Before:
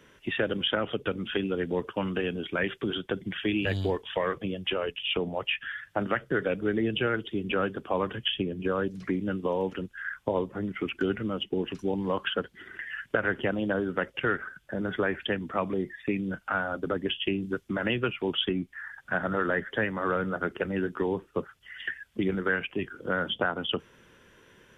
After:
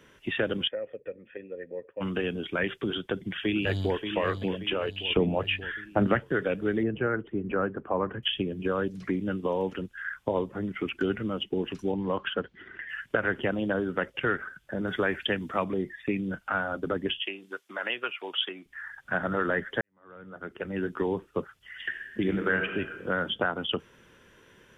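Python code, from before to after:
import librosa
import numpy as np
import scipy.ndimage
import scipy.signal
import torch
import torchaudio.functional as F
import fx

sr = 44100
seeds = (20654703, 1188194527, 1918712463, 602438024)

y = fx.formant_cascade(x, sr, vowel='e', at=(0.67, 2.0), fade=0.02)
y = fx.echo_throw(y, sr, start_s=2.97, length_s=1.03, ms=580, feedback_pct=45, wet_db=-7.5)
y = fx.low_shelf(y, sr, hz=470.0, db=9.5, at=(5.1, 6.2))
y = fx.lowpass(y, sr, hz=1800.0, slope=24, at=(6.83, 8.23))
y = fx.air_absorb(y, sr, metres=160.0, at=(11.92, 12.89))
y = fx.high_shelf(y, sr, hz=3000.0, db=7.5, at=(14.87, 15.64))
y = fx.highpass(y, sr, hz=660.0, slope=12, at=(17.22, 18.66))
y = fx.reverb_throw(y, sr, start_s=21.84, length_s=0.92, rt60_s=1.4, drr_db=5.0)
y = fx.edit(y, sr, fx.fade_in_span(start_s=19.81, length_s=1.09, curve='qua'), tone=tone)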